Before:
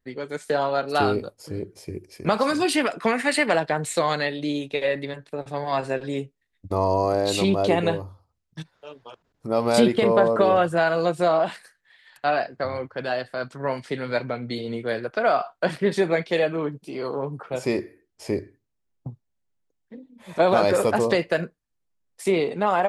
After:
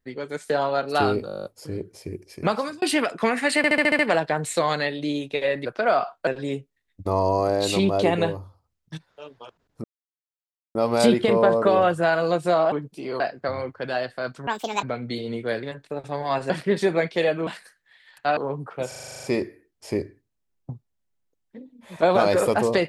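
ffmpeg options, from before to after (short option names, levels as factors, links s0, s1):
-filter_complex "[0:a]asplit=37[s0][s1][s2][s3][s4][s5][s6][s7][s8][s9][s10][s11][s12][s13][s14][s15][s16][s17][s18][s19][s20][s21][s22][s23][s24][s25][s26][s27][s28][s29][s30][s31][s32][s33][s34][s35][s36];[s0]atrim=end=1.292[s37];[s1]atrim=start=1.268:end=1.292[s38];[s2]atrim=start=1.268:end=1.292[s39];[s3]atrim=start=1.268:end=1.292[s40];[s4]atrim=start=1.268:end=1.292[s41];[s5]atrim=start=1.268:end=1.292[s42];[s6]atrim=start=1.268:end=1.292[s43];[s7]atrim=start=1.268:end=1.292[s44];[s8]atrim=start=1.268:end=1.292[s45];[s9]atrim=start=1.268:end=2.64,asetpts=PTS-STARTPTS,afade=t=out:st=1.002:d=0.37[s46];[s10]atrim=start=2.64:end=3.462,asetpts=PTS-STARTPTS,afade=t=in:d=0.004:c=hsin[s47];[s11]atrim=start=3.388:end=3.462[s48];[s12]atrim=start=3.388:end=3.462[s49];[s13]atrim=start=3.388:end=3.462[s50];[s14]atrim=start=3.388:end=3.462[s51];[s15]atrim=start=3.388:end=3.462[s52];[s16]atrim=start=3.388:end=5.052[s53];[s17]atrim=start=15.028:end=15.652[s54];[s18]atrim=start=5.918:end=9.49,asetpts=PTS-STARTPTS,afade=t=out:st=3.568:d=0.004:c=hsin,apad=pad_dur=0.91[s55];[s19]atrim=start=9.49:end=11.462,asetpts=PTS-STARTPTS,afade=t=in:d=0.004:c=hsin[s56];[s20]atrim=start=16.618:end=17.102[s57];[s21]atrim=start=12.358:end=13.634[s58];[s22]atrim=start=13.63:end=14.23,asetpts=PTS-STARTPTS,asetrate=73647,aresample=44100,atrim=end_sample=15844,asetpts=PTS-STARTPTS[s59];[s23]atrim=start=14.226:end=15.032[s60];[s24]atrim=start=5.048:end=5.922[s61];[s25]atrim=start=15.648:end=16.622[s62];[s26]atrim=start=11.458:end=12.362[s63];[s27]atrim=start=17.098:end=17.652[s64];[s28]atrim=start=17.608:end=17.652[s65];[s29]atrim=start=17.608:end=17.652[s66];[s30]atrim=start=17.608:end=17.652[s67];[s31]atrim=start=17.608:end=17.652[s68];[s32]atrim=start=17.608:end=17.652[s69];[s33]atrim=start=17.608:end=17.652[s70];[s34]atrim=start=17.608:end=17.652[s71];[s35]atrim=start=17.608:end=17.652[s72];[s36]atrim=start=17.608[s73];[s37][s38]acrossfade=d=0.004:c1=hsin:c2=hsin[s74];[s74][s39]acrossfade=d=0.004:c1=hsin:c2=hsin[s75];[s75][s40]acrossfade=d=0.004:c1=hsin:c2=hsin[s76];[s76][s41]acrossfade=d=0.004:c1=hsin:c2=hsin[s77];[s77][s42]acrossfade=d=0.004:c1=hsin:c2=hsin[s78];[s78][s43]acrossfade=d=0.004:c1=hsin:c2=hsin[s79];[s79][s44]acrossfade=d=0.004:c1=hsin:c2=hsin[s80];[s80][s45]acrossfade=d=0.004:c1=hsin:c2=hsin[s81];[s46][s47]concat=n=2:v=0:a=1[s82];[s81][s82]acrossfade=d=0.004:c1=hsin:c2=hsin[s83];[s83][s48]acrossfade=d=0.004:c1=hsin:c2=hsin[s84];[s84][s49]acrossfade=d=0.004:c1=hsin:c2=hsin[s85];[s85][s50]acrossfade=d=0.004:c1=hsin:c2=hsin[s86];[s86][s51]acrossfade=d=0.004:c1=hsin:c2=hsin[s87];[s87][s52]acrossfade=d=0.004:c1=hsin:c2=hsin[s88];[s88][s53]acrossfade=d=0.004:c1=hsin:c2=hsin[s89];[s89][s54]acrossfade=d=0.004:c1=hsin:c2=hsin[s90];[s55][s56]concat=n=2:v=0:a=1[s91];[s90][s91]acrossfade=d=0.004:c1=hsin:c2=hsin[s92];[s92][s57]acrossfade=d=0.004:c1=hsin:c2=hsin[s93];[s93][s58]acrossfade=d=0.004:c1=hsin:c2=hsin[s94];[s94][s59]acrossfade=d=0.004:c1=hsin:c2=hsin[s95];[s95][s60]acrossfade=d=0.004:c1=hsin:c2=hsin[s96];[s96][s61]acrossfade=d=0.004:c1=hsin:c2=hsin[s97];[s97][s62]acrossfade=d=0.004:c1=hsin:c2=hsin[s98];[s98][s63]acrossfade=d=0.004:c1=hsin:c2=hsin[s99];[s99][s64]acrossfade=d=0.004:c1=hsin:c2=hsin[s100];[s100][s65]acrossfade=d=0.004:c1=hsin:c2=hsin[s101];[s101][s66]acrossfade=d=0.004:c1=hsin:c2=hsin[s102];[s102][s67]acrossfade=d=0.004:c1=hsin:c2=hsin[s103];[s103][s68]acrossfade=d=0.004:c1=hsin:c2=hsin[s104];[s104][s69]acrossfade=d=0.004:c1=hsin:c2=hsin[s105];[s105][s70]acrossfade=d=0.004:c1=hsin:c2=hsin[s106];[s106][s71]acrossfade=d=0.004:c1=hsin:c2=hsin[s107];[s107][s72]acrossfade=d=0.004:c1=hsin:c2=hsin[s108];[s108][s73]acrossfade=d=0.004:c1=hsin:c2=hsin"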